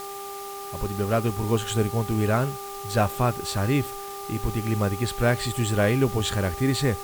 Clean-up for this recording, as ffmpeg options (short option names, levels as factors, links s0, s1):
-af "bandreject=f=398:t=h:w=4,bandreject=f=796:t=h:w=4,bandreject=f=1194:t=h:w=4,afwtdn=0.0079"